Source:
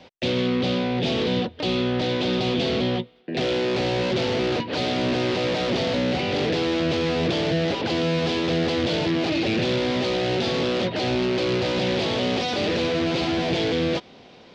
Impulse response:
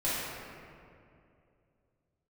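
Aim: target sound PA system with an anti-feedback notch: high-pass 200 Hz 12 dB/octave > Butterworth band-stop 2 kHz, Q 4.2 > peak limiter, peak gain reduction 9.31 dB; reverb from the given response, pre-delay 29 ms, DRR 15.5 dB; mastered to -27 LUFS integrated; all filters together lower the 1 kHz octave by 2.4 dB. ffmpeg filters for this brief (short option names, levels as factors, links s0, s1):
-filter_complex "[0:a]equalizer=f=1000:t=o:g=-3.5,asplit=2[s0][s1];[1:a]atrim=start_sample=2205,adelay=29[s2];[s1][s2]afir=irnorm=-1:irlink=0,volume=0.0562[s3];[s0][s3]amix=inputs=2:normalize=0,highpass=200,asuperstop=centerf=2000:order=8:qfactor=4.2,volume=1.5,alimiter=limit=0.112:level=0:latency=1"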